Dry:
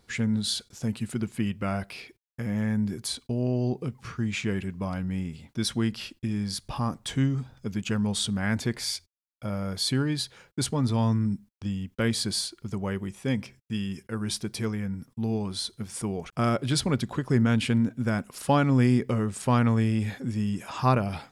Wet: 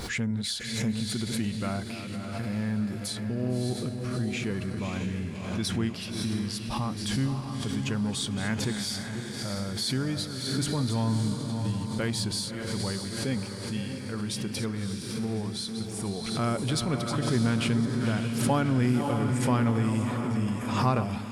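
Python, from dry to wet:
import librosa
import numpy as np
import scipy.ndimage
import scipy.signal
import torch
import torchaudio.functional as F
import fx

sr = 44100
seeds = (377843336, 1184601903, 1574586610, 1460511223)

p1 = fx.reverse_delay(x, sr, ms=308, wet_db=-11)
p2 = 10.0 ** (-25.0 / 20.0) * np.tanh(p1 / 10.0 ** (-25.0 / 20.0))
p3 = p1 + (p2 * 10.0 ** (-11.0 / 20.0))
p4 = fx.echo_diffused(p3, sr, ms=608, feedback_pct=50, wet_db=-6.0)
p5 = fx.pre_swell(p4, sr, db_per_s=47.0)
y = p5 * 10.0 ** (-5.0 / 20.0)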